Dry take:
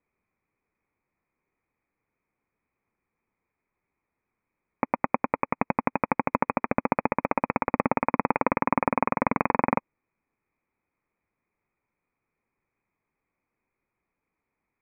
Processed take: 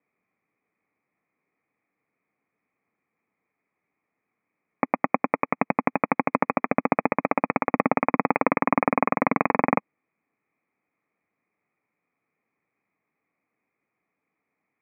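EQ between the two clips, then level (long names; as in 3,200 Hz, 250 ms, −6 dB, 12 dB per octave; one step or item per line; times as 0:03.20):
high-frequency loss of the air 83 metres
loudspeaker in its box 220–2,400 Hz, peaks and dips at 230 Hz −3 dB, 370 Hz −7 dB, 540 Hz −5 dB, 940 Hz −9 dB, 1,500 Hz −7 dB
+8.0 dB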